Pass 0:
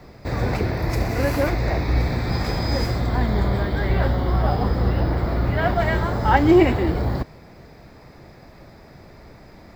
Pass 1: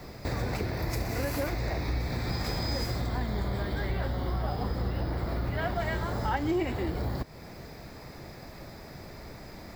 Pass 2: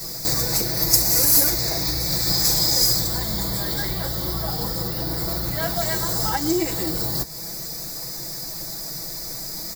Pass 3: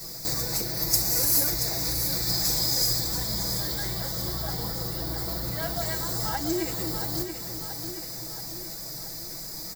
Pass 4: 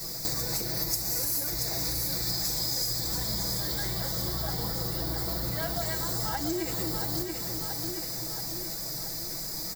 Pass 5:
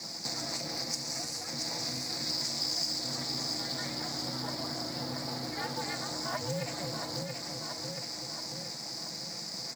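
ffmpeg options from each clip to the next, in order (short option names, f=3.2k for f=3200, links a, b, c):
-af "acompressor=threshold=-31dB:ratio=3,highshelf=f=4.8k:g=9.5"
-af "aecho=1:1:6.1:0.95,flanger=delay=4.9:depth=3.8:regen=-76:speed=0.92:shape=triangular,aexciter=amount=14:drive=3.3:freq=4.3k,volume=5.5dB"
-af "aecho=1:1:679|1358|2037|2716|3395|4074|4753:0.398|0.219|0.12|0.0662|0.0364|0.02|0.011,volume=-6.5dB"
-af "acompressor=threshold=-29dB:ratio=5,volume=2dB"
-af "aeval=exprs='val(0)*sin(2*PI*190*n/s)':c=same,highpass=f=120:w=0.5412,highpass=f=120:w=1.3066,equalizer=f=390:t=q:w=4:g=-8,equalizer=f=710:t=q:w=4:g=4,equalizer=f=2.1k:t=q:w=4:g=4,equalizer=f=3.3k:t=q:w=4:g=-4,equalizer=f=4.7k:t=q:w=4:g=5,lowpass=f=7.5k:w=0.5412,lowpass=f=7.5k:w=1.3066,acrusher=bits=4:mode=log:mix=0:aa=0.000001"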